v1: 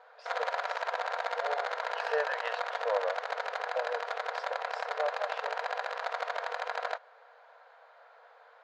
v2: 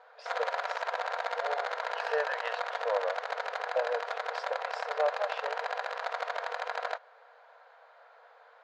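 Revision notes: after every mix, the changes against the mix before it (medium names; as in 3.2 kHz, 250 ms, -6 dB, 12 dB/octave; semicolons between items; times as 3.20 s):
first voice +4.0 dB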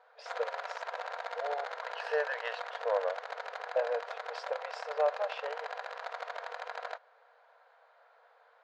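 background -6.0 dB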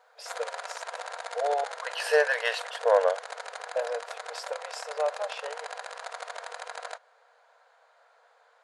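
second voice +8.5 dB; background: add steep low-pass 10 kHz 96 dB/octave; master: remove distance through air 200 m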